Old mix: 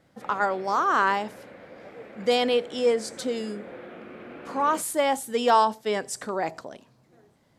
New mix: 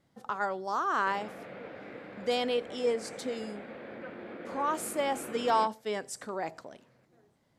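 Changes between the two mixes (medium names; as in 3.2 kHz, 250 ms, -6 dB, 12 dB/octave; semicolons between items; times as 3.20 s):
speech -7.0 dB; background: entry +0.85 s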